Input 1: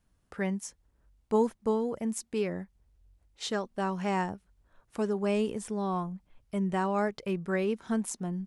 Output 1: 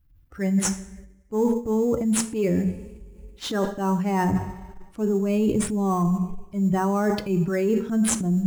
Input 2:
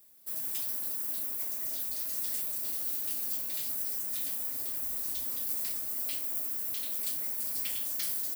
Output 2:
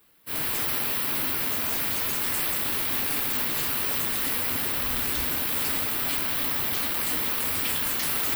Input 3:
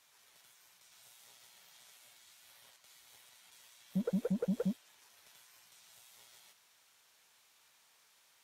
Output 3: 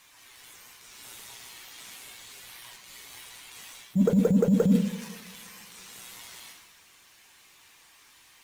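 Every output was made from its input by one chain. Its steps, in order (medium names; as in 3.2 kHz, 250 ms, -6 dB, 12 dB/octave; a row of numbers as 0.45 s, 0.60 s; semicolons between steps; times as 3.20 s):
expander on every frequency bin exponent 1.5; bass shelf 420 Hz +8 dB; two-slope reverb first 0.55 s, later 2.8 s, from -26 dB, DRR 11.5 dB; transient shaper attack -8 dB, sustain +5 dB; in parallel at -6 dB: sample-rate reducer 7.1 kHz, jitter 0%; on the sum: de-hum 46.2 Hz, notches 5; reverse; compression 6:1, threshold -36 dBFS; reverse; peaking EQ 640 Hz -3.5 dB 0.49 oct; normalise loudness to -24 LUFS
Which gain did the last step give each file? +16.0 dB, +13.0 dB, +17.5 dB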